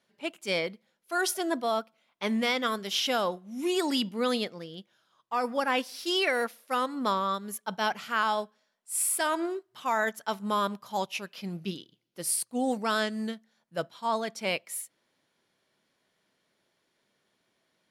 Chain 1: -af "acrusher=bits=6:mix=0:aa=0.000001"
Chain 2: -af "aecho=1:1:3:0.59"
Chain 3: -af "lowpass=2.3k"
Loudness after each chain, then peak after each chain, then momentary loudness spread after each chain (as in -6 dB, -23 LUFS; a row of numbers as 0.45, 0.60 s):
-30.0, -28.5, -31.0 LUFS; -13.5, -12.5, -15.5 dBFS; 10, 12, 11 LU